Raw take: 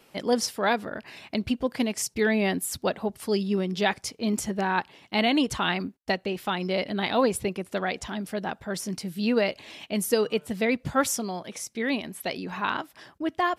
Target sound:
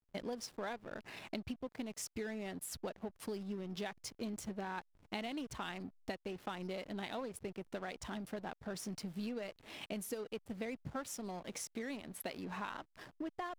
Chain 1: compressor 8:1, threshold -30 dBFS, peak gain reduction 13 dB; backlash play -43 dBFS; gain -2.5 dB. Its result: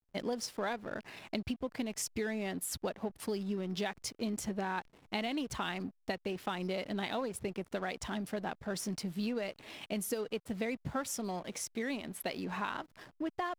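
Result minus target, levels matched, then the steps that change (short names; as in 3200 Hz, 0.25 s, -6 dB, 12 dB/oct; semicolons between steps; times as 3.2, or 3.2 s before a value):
compressor: peak gain reduction -5.5 dB
change: compressor 8:1, threshold -36.5 dBFS, peak gain reduction 18.5 dB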